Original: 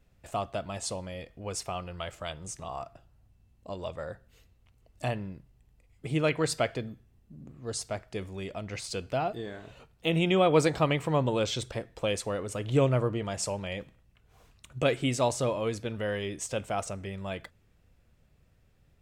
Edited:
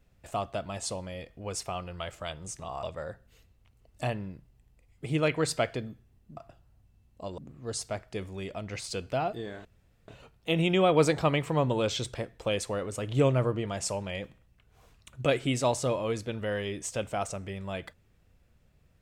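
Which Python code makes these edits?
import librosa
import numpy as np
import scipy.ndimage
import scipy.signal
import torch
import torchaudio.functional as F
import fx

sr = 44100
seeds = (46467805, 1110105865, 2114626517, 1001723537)

y = fx.edit(x, sr, fx.move(start_s=2.83, length_s=1.01, to_s=7.38),
    fx.insert_room_tone(at_s=9.65, length_s=0.43), tone=tone)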